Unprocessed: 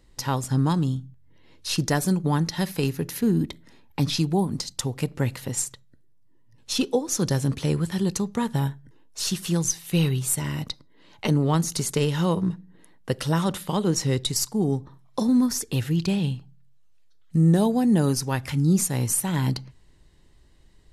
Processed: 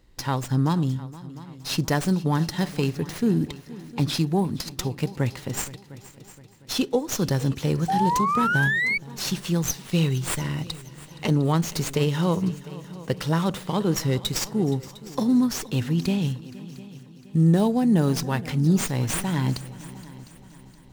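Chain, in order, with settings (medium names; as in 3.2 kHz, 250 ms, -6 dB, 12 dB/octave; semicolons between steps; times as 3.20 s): multi-head delay 235 ms, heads second and third, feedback 45%, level -19 dB; painted sound rise, 7.88–8.98 s, 750–2300 Hz -23 dBFS; sliding maximum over 3 samples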